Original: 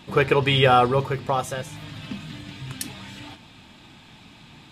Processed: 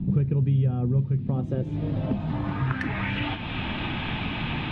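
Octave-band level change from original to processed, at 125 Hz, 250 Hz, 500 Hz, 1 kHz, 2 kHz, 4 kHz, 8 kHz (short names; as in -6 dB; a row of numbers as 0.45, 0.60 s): +5.0 dB, +4.0 dB, -12.0 dB, -12.0 dB, -4.0 dB, -7.5 dB, under -25 dB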